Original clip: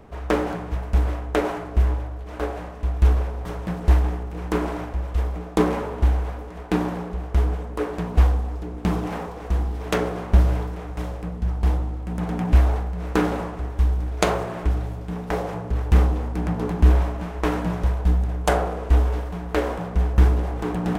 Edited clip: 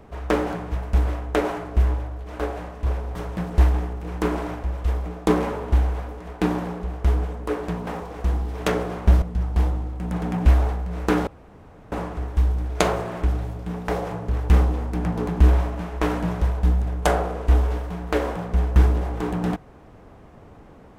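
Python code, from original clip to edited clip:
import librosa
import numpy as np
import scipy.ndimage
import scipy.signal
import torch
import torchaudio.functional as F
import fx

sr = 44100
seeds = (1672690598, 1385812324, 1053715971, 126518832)

y = fx.edit(x, sr, fx.cut(start_s=2.86, length_s=0.3),
    fx.cut(start_s=8.17, length_s=0.96),
    fx.cut(start_s=10.48, length_s=0.81),
    fx.insert_room_tone(at_s=13.34, length_s=0.65), tone=tone)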